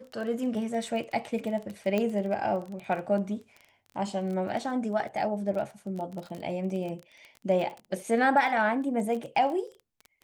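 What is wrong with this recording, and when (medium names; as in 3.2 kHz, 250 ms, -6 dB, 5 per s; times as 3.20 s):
crackle 20 per s -34 dBFS
1.98 s: pop -16 dBFS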